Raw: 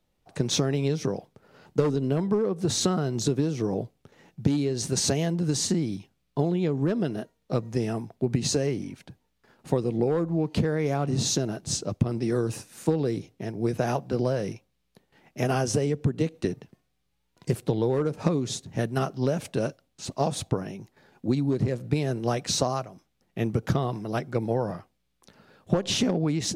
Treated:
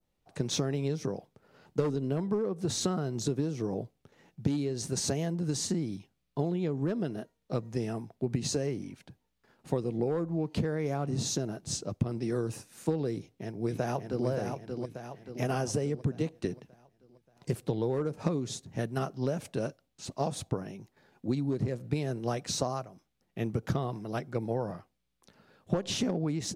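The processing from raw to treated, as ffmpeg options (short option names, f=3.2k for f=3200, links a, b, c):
-filter_complex "[0:a]asplit=2[a][b];[b]afade=t=in:st=13.12:d=0.01,afade=t=out:st=14.27:d=0.01,aecho=0:1:580|1160|1740|2320|2900|3480:0.562341|0.281171|0.140585|0.0702927|0.0351463|0.0175732[c];[a][c]amix=inputs=2:normalize=0,adynamicequalizer=threshold=0.00562:dfrequency=3100:dqfactor=0.97:tfrequency=3100:tqfactor=0.97:attack=5:release=100:ratio=0.375:range=2.5:mode=cutabove:tftype=bell,volume=-5.5dB"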